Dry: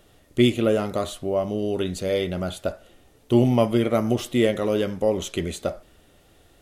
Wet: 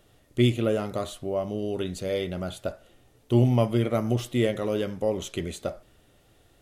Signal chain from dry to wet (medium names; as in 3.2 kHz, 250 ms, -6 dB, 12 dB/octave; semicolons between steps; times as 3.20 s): peaking EQ 120 Hz +8 dB 0.2 oct; trim -4.5 dB